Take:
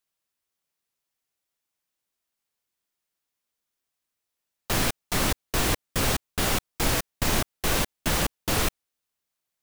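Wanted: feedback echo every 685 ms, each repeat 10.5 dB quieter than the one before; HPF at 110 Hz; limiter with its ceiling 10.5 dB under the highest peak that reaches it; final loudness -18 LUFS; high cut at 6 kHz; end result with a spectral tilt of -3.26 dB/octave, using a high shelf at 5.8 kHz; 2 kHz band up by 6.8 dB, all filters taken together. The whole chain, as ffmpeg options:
-af "highpass=110,lowpass=6000,equalizer=f=2000:t=o:g=9,highshelf=f=5800:g=-4.5,alimiter=limit=0.0891:level=0:latency=1,aecho=1:1:685|1370|2055:0.299|0.0896|0.0269,volume=4.73"

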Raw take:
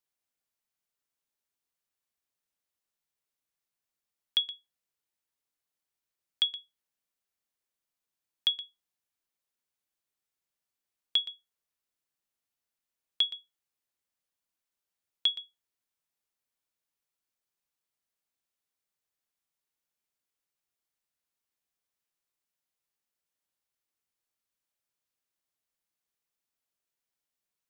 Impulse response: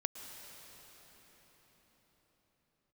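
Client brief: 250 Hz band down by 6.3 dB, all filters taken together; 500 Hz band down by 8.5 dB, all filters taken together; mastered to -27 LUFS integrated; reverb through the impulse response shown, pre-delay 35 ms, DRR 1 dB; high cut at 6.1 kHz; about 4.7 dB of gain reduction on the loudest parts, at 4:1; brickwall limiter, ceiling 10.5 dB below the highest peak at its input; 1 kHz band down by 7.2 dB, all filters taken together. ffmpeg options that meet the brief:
-filter_complex "[0:a]lowpass=6100,equalizer=f=250:t=o:g=-6,equalizer=f=500:t=o:g=-7,equalizer=f=1000:t=o:g=-7.5,acompressor=threshold=0.0398:ratio=4,alimiter=level_in=1.41:limit=0.0631:level=0:latency=1,volume=0.708,asplit=2[s0][s1];[1:a]atrim=start_sample=2205,adelay=35[s2];[s1][s2]afir=irnorm=-1:irlink=0,volume=0.841[s3];[s0][s3]amix=inputs=2:normalize=0,volume=5.62"

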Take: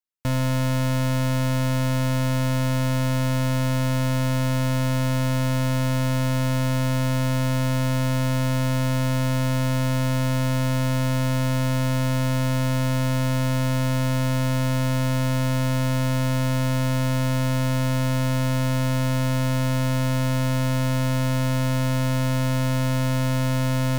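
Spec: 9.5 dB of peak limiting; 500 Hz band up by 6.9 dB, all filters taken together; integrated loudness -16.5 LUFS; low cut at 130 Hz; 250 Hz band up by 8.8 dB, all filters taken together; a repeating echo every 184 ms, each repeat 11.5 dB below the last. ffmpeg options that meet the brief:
-af "highpass=130,equalizer=f=250:t=o:g=8.5,equalizer=f=500:t=o:g=6.5,alimiter=limit=0.0944:level=0:latency=1,aecho=1:1:184|368|552:0.266|0.0718|0.0194,volume=3.55"

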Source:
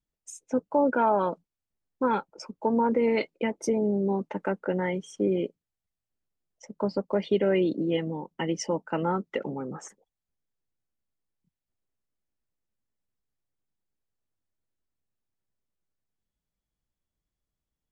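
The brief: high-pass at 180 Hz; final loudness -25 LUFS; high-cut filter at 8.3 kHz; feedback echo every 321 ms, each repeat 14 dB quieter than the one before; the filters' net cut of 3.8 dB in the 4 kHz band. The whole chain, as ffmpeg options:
-af "highpass=180,lowpass=8300,equalizer=f=4000:t=o:g=-6,aecho=1:1:321|642:0.2|0.0399,volume=1.5"

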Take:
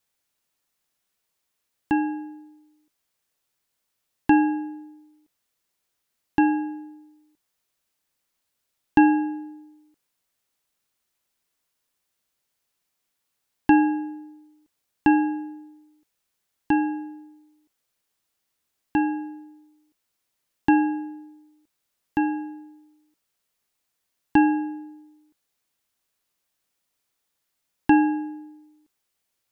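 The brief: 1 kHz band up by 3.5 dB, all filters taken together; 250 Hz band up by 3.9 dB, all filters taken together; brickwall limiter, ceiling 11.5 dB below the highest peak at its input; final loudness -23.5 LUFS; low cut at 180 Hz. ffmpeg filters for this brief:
-af "highpass=180,equalizer=f=250:t=o:g=5.5,equalizer=f=1000:t=o:g=4,volume=1.12,alimiter=limit=0.266:level=0:latency=1"

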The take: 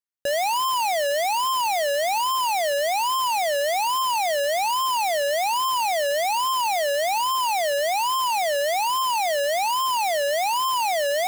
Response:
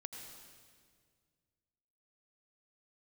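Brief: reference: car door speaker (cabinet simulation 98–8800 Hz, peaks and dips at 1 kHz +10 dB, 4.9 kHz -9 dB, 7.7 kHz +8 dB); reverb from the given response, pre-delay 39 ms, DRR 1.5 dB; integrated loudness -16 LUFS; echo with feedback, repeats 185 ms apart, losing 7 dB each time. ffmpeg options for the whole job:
-filter_complex "[0:a]aecho=1:1:185|370|555|740|925:0.447|0.201|0.0905|0.0407|0.0183,asplit=2[s0][s1];[1:a]atrim=start_sample=2205,adelay=39[s2];[s1][s2]afir=irnorm=-1:irlink=0,volume=1.19[s3];[s0][s3]amix=inputs=2:normalize=0,highpass=98,equalizer=f=1000:t=q:w=4:g=10,equalizer=f=4900:t=q:w=4:g=-9,equalizer=f=7700:t=q:w=4:g=8,lowpass=f=8800:w=0.5412,lowpass=f=8800:w=1.3066,volume=0.841"

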